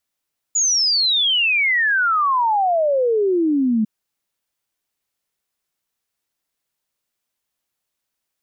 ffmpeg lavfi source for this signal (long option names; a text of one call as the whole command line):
ffmpeg -f lavfi -i "aevalsrc='0.188*clip(min(t,3.3-t)/0.01,0,1)*sin(2*PI*7000*3.3/log(210/7000)*(exp(log(210/7000)*t/3.3)-1))':duration=3.3:sample_rate=44100" out.wav